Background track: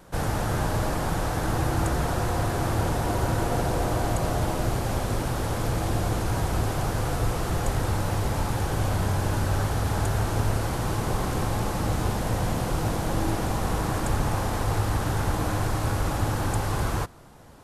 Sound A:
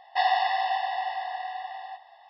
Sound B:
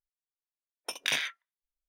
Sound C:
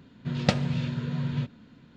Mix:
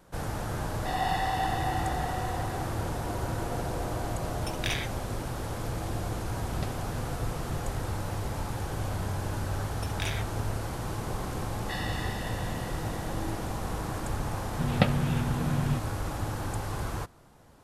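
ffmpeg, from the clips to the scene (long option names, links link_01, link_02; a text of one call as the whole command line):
ffmpeg -i bed.wav -i cue0.wav -i cue1.wav -i cue2.wav -filter_complex "[1:a]asplit=2[link_01][link_02];[2:a]asplit=2[link_03][link_04];[3:a]asplit=2[link_05][link_06];[0:a]volume=-7dB[link_07];[link_01]dynaudnorm=framelen=200:gausssize=3:maxgain=11.5dB[link_08];[link_05]alimiter=limit=-9dB:level=0:latency=1:release=71[link_09];[link_02]highpass=frequency=1200:width=0.5412,highpass=frequency=1200:width=1.3066[link_10];[link_06]lowpass=frequency=3600:width=0.5412,lowpass=frequency=3600:width=1.3066[link_11];[link_08]atrim=end=2.29,asetpts=PTS-STARTPTS,volume=-13.5dB,afade=type=in:duration=0.004:curve=hsin,afade=type=out:start_time=2.286:duration=0.004:curve=hsin,adelay=690[link_12];[link_03]atrim=end=1.88,asetpts=PTS-STARTPTS,volume=-3.5dB,afade=type=in:duration=0.004:curve=hsin,afade=type=out:start_time=1.876:duration=0.004:curve=hsin,adelay=3580[link_13];[link_09]atrim=end=1.96,asetpts=PTS-STARTPTS,volume=-13.5dB,afade=type=in:duration=0.004:curve=hsin,afade=type=out:start_time=1.956:duration=0.004:curve=hsin,adelay=6140[link_14];[link_04]atrim=end=1.88,asetpts=PTS-STARTPTS,volume=-7.5dB,afade=type=in:duration=0.004:curve=hsin,afade=type=out:start_time=1.876:duration=0.004:curve=hsin,adelay=8940[link_15];[link_10]atrim=end=2.29,asetpts=PTS-STARTPTS,volume=-7dB,afade=type=in:duration=0.004:curve=hsin,afade=type=out:start_time=2.286:duration=0.004:curve=hsin,adelay=11530[link_16];[link_11]atrim=end=1.96,asetpts=PTS-STARTPTS,afade=type=in:duration=0.004:curve=hsin,afade=type=out:start_time=1.956:duration=0.004:curve=hsin,adelay=14330[link_17];[link_07][link_12][link_13][link_14][link_15][link_16][link_17]amix=inputs=7:normalize=0" out.wav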